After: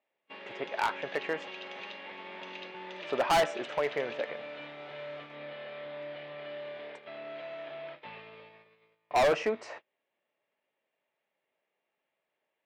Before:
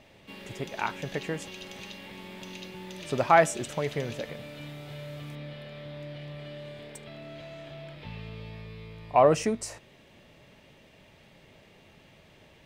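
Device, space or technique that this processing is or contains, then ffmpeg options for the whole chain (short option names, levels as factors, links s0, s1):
walkie-talkie: -af "highpass=520,lowpass=2400,lowpass=6100,asoftclip=type=hard:threshold=0.0473,agate=range=0.0398:threshold=0.00316:ratio=16:detection=peak,volume=1.78"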